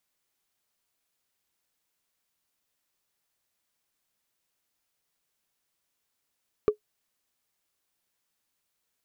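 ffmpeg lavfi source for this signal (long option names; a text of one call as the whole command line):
ffmpeg -f lavfi -i "aevalsrc='0.237*pow(10,-3*t/0.1)*sin(2*PI*422*t)+0.0596*pow(10,-3*t/0.03)*sin(2*PI*1163.5*t)+0.015*pow(10,-3*t/0.013)*sin(2*PI*2280.5*t)+0.00376*pow(10,-3*t/0.007)*sin(2*PI*3769.7*t)+0.000944*pow(10,-3*t/0.004)*sin(2*PI*5629.5*t)':duration=0.45:sample_rate=44100" out.wav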